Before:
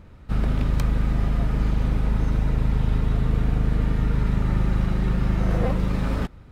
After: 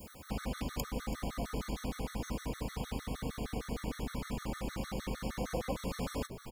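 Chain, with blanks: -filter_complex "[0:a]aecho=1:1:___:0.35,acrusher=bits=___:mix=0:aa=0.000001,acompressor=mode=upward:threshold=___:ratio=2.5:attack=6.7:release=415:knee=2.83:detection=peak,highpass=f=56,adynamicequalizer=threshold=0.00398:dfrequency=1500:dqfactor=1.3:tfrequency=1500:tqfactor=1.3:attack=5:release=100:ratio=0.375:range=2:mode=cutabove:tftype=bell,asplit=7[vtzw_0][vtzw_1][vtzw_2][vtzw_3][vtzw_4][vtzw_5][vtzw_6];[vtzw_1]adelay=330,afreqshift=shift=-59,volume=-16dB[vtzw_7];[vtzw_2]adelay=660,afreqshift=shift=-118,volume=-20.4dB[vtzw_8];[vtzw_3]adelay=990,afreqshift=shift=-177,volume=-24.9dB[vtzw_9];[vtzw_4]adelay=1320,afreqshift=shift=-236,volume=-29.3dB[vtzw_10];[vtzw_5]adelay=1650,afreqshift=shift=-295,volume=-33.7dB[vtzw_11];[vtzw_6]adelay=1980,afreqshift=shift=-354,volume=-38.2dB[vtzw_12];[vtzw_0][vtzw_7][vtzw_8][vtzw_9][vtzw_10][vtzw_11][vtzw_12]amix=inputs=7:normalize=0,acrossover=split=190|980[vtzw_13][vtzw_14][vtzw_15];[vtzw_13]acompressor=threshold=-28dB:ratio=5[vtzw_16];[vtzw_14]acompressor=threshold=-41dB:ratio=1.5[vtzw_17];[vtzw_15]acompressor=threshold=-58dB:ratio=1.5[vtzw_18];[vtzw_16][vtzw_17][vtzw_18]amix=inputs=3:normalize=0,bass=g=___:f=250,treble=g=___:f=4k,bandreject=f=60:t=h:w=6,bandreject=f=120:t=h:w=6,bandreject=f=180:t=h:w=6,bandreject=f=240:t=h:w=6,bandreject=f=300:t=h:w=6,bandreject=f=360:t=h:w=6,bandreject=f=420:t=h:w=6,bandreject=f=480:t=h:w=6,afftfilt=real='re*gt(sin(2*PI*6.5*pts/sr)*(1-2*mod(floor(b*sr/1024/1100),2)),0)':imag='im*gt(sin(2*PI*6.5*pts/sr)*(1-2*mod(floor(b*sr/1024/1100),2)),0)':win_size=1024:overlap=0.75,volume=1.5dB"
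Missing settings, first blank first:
4, 10, -33dB, -9, 12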